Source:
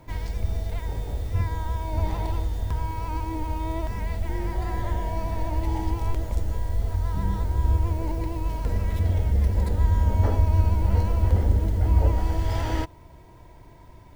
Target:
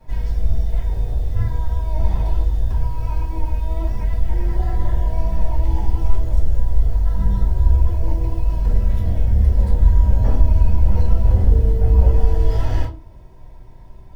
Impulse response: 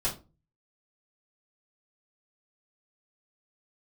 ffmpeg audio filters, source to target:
-filter_complex "[0:a]asettb=1/sr,asplit=3[s0][s1][s2];[s0]atrim=end=11.514[s3];[s1]atrim=start=11.51:end=12.56,asetpts=PTS-STARTPTS,afade=t=in:d=0.004:c=qsin,afade=t=out:st=1.046:d=0.004:c=qsin,aeval=exprs='val(0)+0.0501*sin(2*PI*450*n/s)':c=same[s4];[s2]atrim=start=12.556[s5];[s3][s4]acrossfade=d=0.004:c1=hsin:c2=qsin[s6];[s6][s5]acrossfade=d=0.004:c1=qsin:c2=hsin[s7];[1:a]atrim=start_sample=2205,asetrate=43659,aresample=44100[s8];[s7][s8]afir=irnorm=-1:irlink=0,volume=0.422"

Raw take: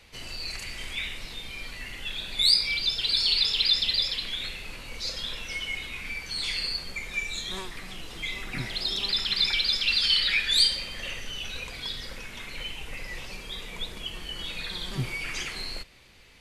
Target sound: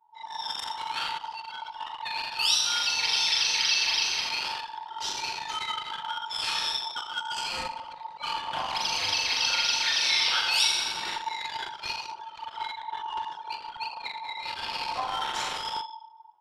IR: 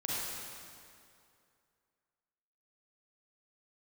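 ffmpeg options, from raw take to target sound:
-filter_complex "[0:a]acompressor=threshold=0.0282:ratio=1.5,aecho=1:1:40|84|132.4|185.6|244.2:0.631|0.398|0.251|0.158|0.1,asplit=2[s0][s1];[1:a]atrim=start_sample=2205[s2];[s1][s2]afir=irnorm=-1:irlink=0,volume=0.473[s3];[s0][s3]amix=inputs=2:normalize=0,anlmdn=39.8,aeval=exprs='val(0)*sin(2*PI*900*n/s)':c=same"

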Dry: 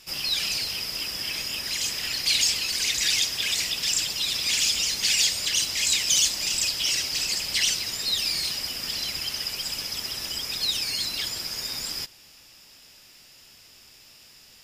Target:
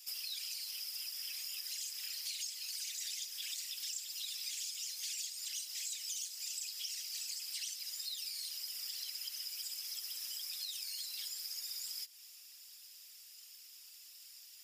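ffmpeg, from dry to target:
-af "afftfilt=real='hypot(re,im)*cos(2*PI*random(0))':imag='hypot(re,im)*sin(2*PI*random(1))':win_size=512:overlap=0.75,aderivative,acompressor=threshold=0.00631:ratio=6,volume=1.58"

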